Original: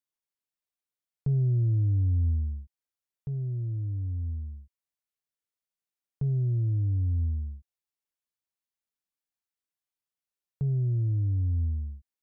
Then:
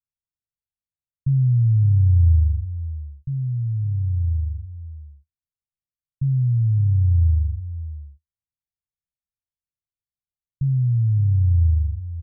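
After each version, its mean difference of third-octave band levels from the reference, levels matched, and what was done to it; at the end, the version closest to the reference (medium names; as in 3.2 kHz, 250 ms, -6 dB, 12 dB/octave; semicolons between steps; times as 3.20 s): 3.0 dB: inverse Chebyshev low-pass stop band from 530 Hz, stop band 60 dB; peaking EQ 78 Hz +4 dB 0.41 oct; delay 559 ms -13.5 dB; trim +7.5 dB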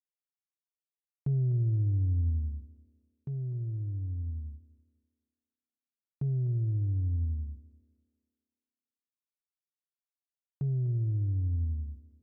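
1.0 dB: gate with hold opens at -30 dBFS; on a send: thinning echo 250 ms, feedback 54%, high-pass 240 Hz, level -11.5 dB; on the sum: trim -3 dB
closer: second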